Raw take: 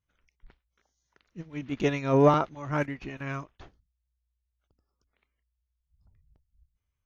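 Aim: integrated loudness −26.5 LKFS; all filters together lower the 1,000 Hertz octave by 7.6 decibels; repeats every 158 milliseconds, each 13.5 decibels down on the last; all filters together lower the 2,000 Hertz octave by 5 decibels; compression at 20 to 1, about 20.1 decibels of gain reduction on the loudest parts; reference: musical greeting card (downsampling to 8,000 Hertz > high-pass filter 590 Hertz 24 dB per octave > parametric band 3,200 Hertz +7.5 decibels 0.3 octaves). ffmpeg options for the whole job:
ffmpeg -i in.wav -af "equalizer=frequency=1000:width_type=o:gain=-8.5,equalizer=frequency=2000:width_type=o:gain=-4.5,acompressor=threshold=-36dB:ratio=20,aecho=1:1:158|316:0.211|0.0444,aresample=8000,aresample=44100,highpass=frequency=590:width=0.5412,highpass=frequency=590:width=1.3066,equalizer=frequency=3200:width_type=o:width=0.3:gain=7.5,volume=24dB" out.wav

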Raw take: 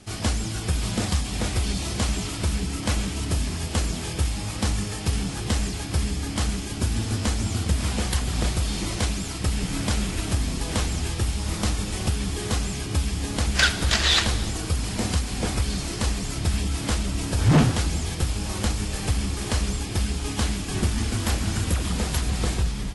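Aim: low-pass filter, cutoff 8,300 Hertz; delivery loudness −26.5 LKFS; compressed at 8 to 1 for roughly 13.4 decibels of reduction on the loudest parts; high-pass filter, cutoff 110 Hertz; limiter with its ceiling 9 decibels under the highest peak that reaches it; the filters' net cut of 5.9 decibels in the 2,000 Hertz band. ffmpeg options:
ffmpeg -i in.wav -af "highpass=110,lowpass=8300,equalizer=frequency=2000:width_type=o:gain=-8,acompressor=threshold=-27dB:ratio=8,volume=7dB,alimiter=limit=-17dB:level=0:latency=1" out.wav

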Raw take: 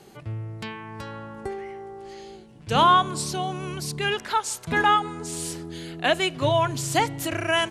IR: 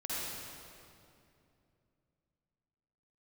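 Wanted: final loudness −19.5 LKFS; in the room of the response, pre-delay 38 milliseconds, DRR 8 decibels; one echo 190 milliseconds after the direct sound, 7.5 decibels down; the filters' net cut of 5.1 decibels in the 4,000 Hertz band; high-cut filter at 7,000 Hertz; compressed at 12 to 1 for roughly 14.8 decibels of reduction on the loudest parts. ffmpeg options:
-filter_complex "[0:a]lowpass=7000,equalizer=frequency=4000:width_type=o:gain=-7.5,acompressor=threshold=-29dB:ratio=12,aecho=1:1:190:0.422,asplit=2[link_01][link_02];[1:a]atrim=start_sample=2205,adelay=38[link_03];[link_02][link_03]afir=irnorm=-1:irlink=0,volume=-12dB[link_04];[link_01][link_04]amix=inputs=2:normalize=0,volume=14dB"

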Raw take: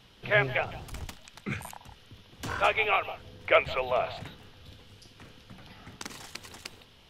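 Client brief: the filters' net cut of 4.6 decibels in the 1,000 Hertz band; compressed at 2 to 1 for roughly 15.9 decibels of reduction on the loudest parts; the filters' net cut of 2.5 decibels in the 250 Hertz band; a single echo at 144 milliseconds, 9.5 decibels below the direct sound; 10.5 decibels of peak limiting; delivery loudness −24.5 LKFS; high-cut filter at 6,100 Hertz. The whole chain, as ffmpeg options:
ffmpeg -i in.wav -af "lowpass=6100,equalizer=frequency=250:width_type=o:gain=-3.5,equalizer=frequency=1000:width_type=o:gain=-6.5,acompressor=threshold=-50dB:ratio=2,alimiter=level_in=12.5dB:limit=-24dB:level=0:latency=1,volume=-12.5dB,aecho=1:1:144:0.335,volume=25dB" out.wav

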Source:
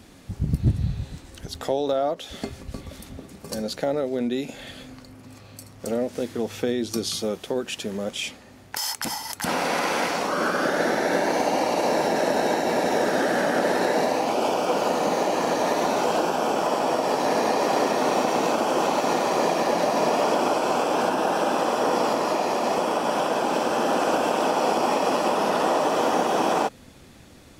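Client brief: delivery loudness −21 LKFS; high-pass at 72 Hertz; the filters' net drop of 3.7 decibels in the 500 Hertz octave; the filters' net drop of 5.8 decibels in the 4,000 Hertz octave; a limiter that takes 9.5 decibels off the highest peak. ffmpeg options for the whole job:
ffmpeg -i in.wav -af "highpass=72,equalizer=frequency=500:width_type=o:gain=-4.5,equalizer=frequency=4000:width_type=o:gain=-8,volume=8.5dB,alimiter=limit=-11.5dB:level=0:latency=1" out.wav

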